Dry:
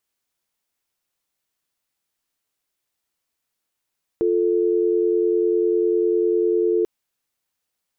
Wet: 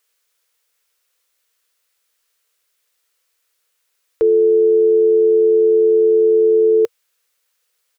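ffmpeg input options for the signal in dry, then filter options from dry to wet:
-f lavfi -i "aevalsrc='0.112*(sin(2*PI*350*t)+sin(2*PI*440*t))':d=2.64:s=44100"
-af "firequalizer=gain_entry='entry(100,0);entry(160,-24);entry(470,13);entry(690,2);entry(1300,11)':delay=0.05:min_phase=1"

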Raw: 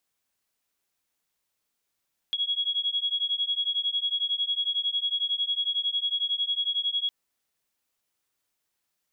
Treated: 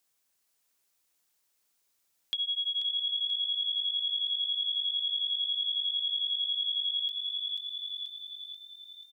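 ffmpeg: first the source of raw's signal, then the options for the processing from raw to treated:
-f lavfi -i "aevalsrc='0.0398*(sin(2*PI*3320*t)+sin(2*PI*3331*t))':d=4.76:s=44100"
-filter_complex "[0:a]bass=f=250:g=-3,treble=f=4000:g=5,asplit=7[s0][s1][s2][s3][s4][s5][s6];[s1]adelay=485,afreqshift=47,volume=0.473[s7];[s2]adelay=970,afreqshift=94,volume=0.245[s8];[s3]adelay=1455,afreqshift=141,volume=0.127[s9];[s4]adelay=1940,afreqshift=188,volume=0.0668[s10];[s5]adelay=2425,afreqshift=235,volume=0.0347[s11];[s6]adelay=2910,afreqshift=282,volume=0.018[s12];[s0][s7][s8][s9][s10][s11][s12]amix=inputs=7:normalize=0,acompressor=threshold=0.0224:ratio=2"

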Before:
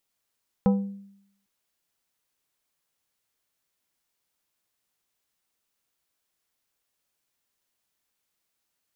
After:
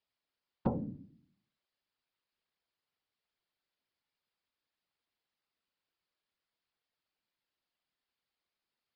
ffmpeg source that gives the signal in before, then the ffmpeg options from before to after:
-f lavfi -i "aevalsrc='0.178*pow(10,-3*t/0.75)*sin(2*PI*198*t)+0.0841*pow(10,-3*t/0.395)*sin(2*PI*495*t)+0.0398*pow(10,-3*t/0.284)*sin(2*PI*792*t)+0.0188*pow(10,-3*t/0.243)*sin(2*PI*990*t)+0.00891*pow(10,-3*t/0.202)*sin(2*PI*1287*t)':d=0.8:s=44100"
-af "bandreject=f=50:t=h:w=6,bandreject=f=100:t=h:w=6,bandreject=f=150:t=h:w=6,bandreject=f=200:t=h:w=6,afftfilt=real='hypot(re,im)*cos(2*PI*random(0))':imag='hypot(re,im)*sin(2*PI*random(1))':win_size=512:overlap=0.75,aresample=11025,aresample=44100"

